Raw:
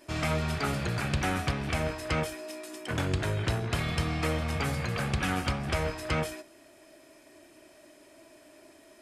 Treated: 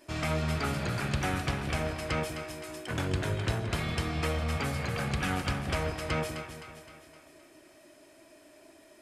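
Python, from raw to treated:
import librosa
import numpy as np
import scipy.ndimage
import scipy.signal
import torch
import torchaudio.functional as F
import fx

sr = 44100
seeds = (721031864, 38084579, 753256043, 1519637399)

y = fx.echo_split(x, sr, split_hz=790.0, low_ms=192, high_ms=259, feedback_pct=52, wet_db=-8.5)
y = F.gain(torch.from_numpy(y), -2.0).numpy()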